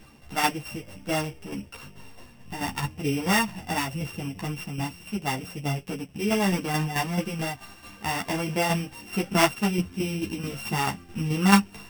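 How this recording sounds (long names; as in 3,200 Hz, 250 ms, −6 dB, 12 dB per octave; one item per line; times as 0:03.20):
a buzz of ramps at a fixed pitch in blocks of 16 samples
tremolo saw down 4.6 Hz, depth 60%
a shimmering, thickened sound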